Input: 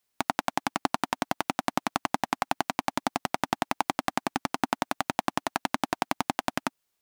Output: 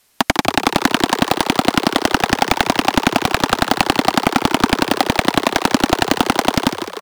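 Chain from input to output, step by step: tracing distortion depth 0.063 ms; downsampling 32000 Hz; sine folder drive 16 dB, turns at -4 dBFS; on a send: frequency-shifting echo 0.15 s, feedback 62%, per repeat +85 Hz, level -9.5 dB; on the sum: gain +1.5 dB

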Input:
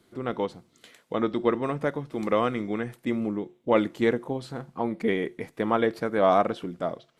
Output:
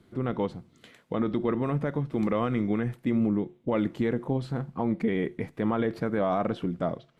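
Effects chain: tone controls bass +9 dB, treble -7 dB; limiter -17.5 dBFS, peak gain reduction 9 dB

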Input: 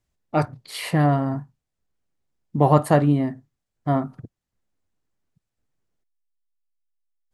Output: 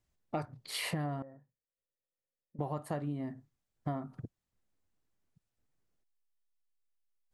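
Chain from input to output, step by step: compressor 12:1, threshold -29 dBFS, peak gain reduction 19.5 dB; 1.22–2.59 vocal tract filter e; gain -3.5 dB

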